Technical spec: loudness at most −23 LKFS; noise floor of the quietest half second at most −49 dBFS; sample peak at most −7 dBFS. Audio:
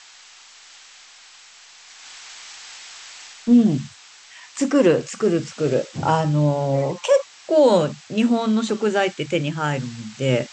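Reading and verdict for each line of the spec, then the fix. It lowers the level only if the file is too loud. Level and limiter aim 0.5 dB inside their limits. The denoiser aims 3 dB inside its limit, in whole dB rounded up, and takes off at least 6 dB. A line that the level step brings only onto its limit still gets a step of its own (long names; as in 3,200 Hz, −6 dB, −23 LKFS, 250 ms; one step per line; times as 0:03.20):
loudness −20.0 LKFS: out of spec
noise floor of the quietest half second −47 dBFS: out of spec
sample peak −5.5 dBFS: out of spec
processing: level −3.5 dB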